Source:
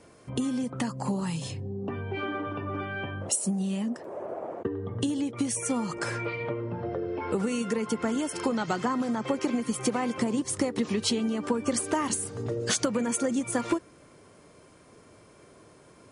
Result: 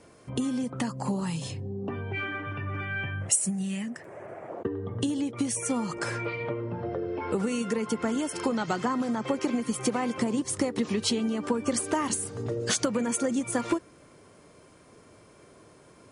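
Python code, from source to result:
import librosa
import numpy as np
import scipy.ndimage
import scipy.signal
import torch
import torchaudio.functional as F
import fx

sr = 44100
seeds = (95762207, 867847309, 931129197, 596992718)

y = fx.graphic_eq(x, sr, hz=(125, 250, 500, 1000, 2000, 4000, 8000), db=(7, -6, -6, -6, 10, -5, 5), at=(2.12, 4.5))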